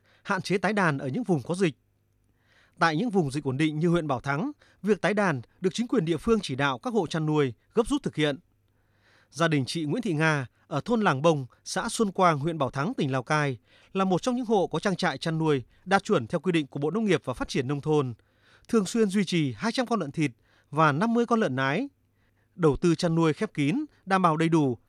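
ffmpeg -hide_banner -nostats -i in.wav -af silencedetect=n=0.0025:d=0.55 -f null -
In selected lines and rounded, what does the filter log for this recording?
silence_start: 1.73
silence_end: 2.52 | silence_duration: 0.79
silence_start: 8.40
silence_end: 9.07 | silence_duration: 0.67
silence_start: 21.89
silence_end: 22.57 | silence_duration: 0.68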